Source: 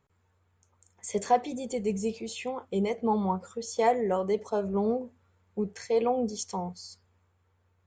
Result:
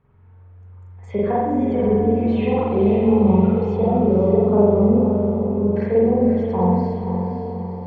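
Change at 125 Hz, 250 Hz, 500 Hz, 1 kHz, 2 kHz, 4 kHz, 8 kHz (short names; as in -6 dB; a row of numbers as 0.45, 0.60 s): +18.5 dB, +15.5 dB, +11.5 dB, +4.5 dB, +3.0 dB, n/a, under -25 dB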